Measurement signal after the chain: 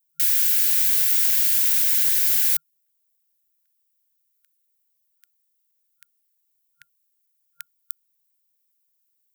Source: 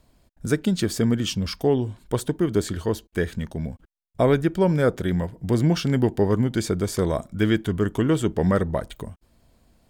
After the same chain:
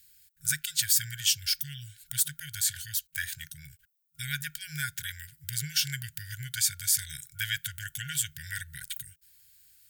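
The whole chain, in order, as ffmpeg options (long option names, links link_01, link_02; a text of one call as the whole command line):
ffmpeg -i in.wav -af "afftfilt=real='re*(1-between(b*sr/4096,160,1400))':imag='im*(1-between(b*sr/4096,160,1400))':win_size=4096:overlap=0.75,acontrast=48,aemphasis=mode=production:type=riaa,volume=-9dB" out.wav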